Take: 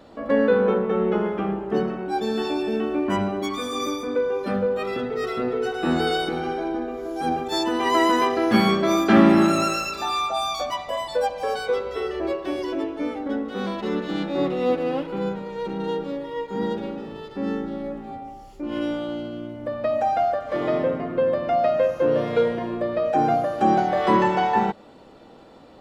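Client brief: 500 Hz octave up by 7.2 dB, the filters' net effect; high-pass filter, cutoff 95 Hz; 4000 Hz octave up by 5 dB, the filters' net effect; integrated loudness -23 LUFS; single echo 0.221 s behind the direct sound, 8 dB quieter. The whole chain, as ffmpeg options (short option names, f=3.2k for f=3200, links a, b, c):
-af "highpass=95,equalizer=f=500:t=o:g=8.5,equalizer=f=4k:t=o:g=6,aecho=1:1:221:0.398,volume=-5dB"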